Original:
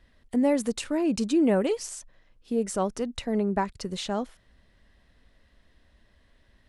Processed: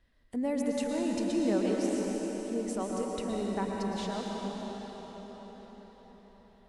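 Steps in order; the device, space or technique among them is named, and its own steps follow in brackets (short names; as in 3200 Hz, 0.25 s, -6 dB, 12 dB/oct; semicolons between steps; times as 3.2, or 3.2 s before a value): cathedral (reverb RT60 5.9 s, pre-delay 0.106 s, DRR -2.5 dB); gain -9 dB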